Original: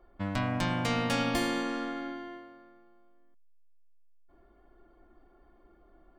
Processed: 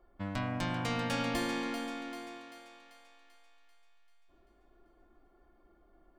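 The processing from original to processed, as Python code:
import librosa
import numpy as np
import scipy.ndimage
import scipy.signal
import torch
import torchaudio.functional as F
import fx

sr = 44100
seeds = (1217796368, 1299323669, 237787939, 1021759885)

y = fx.echo_thinned(x, sr, ms=390, feedback_pct=55, hz=490.0, wet_db=-8)
y = y * librosa.db_to_amplitude(-4.5)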